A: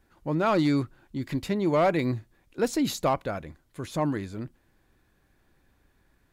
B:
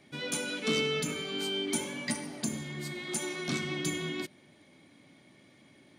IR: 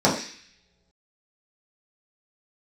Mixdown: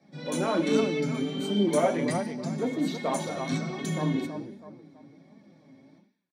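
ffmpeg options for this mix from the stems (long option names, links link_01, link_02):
-filter_complex "[0:a]afwtdn=0.0158,highpass=190,volume=-3dB,asplit=4[link_01][link_02][link_03][link_04];[link_02]volume=-23.5dB[link_05];[link_03]volume=-5.5dB[link_06];[1:a]volume=-2dB,asplit=2[link_07][link_08];[link_08]volume=-15dB[link_09];[link_04]apad=whole_len=263833[link_10];[link_07][link_10]sidechaingate=range=-33dB:threshold=-54dB:ratio=16:detection=peak[link_11];[2:a]atrim=start_sample=2205[link_12];[link_05][link_09]amix=inputs=2:normalize=0[link_13];[link_13][link_12]afir=irnorm=-1:irlink=0[link_14];[link_06]aecho=0:1:325|650|975|1300|1625:1|0.37|0.137|0.0507|0.0187[link_15];[link_01][link_11][link_14][link_15]amix=inputs=4:normalize=0,flanger=delay=4.3:depth=3.7:regen=37:speed=1.3:shape=triangular"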